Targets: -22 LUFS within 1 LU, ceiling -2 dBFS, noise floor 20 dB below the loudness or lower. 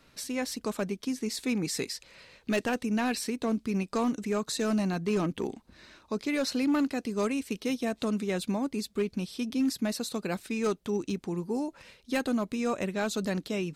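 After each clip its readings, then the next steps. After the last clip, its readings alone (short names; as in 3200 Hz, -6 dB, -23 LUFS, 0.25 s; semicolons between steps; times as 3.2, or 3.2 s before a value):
clipped 1.1%; flat tops at -21.5 dBFS; loudness -31.0 LUFS; peak -21.5 dBFS; loudness target -22.0 LUFS
-> clip repair -21.5 dBFS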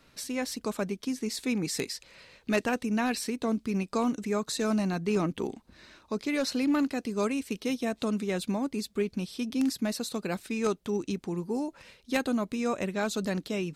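clipped 0.0%; loudness -31.0 LUFS; peak -12.5 dBFS; loudness target -22.0 LUFS
-> gain +9 dB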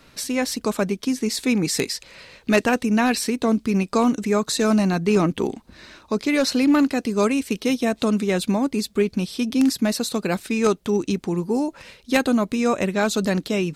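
loudness -22.0 LUFS; peak -3.5 dBFS; noise floor -55 dBFS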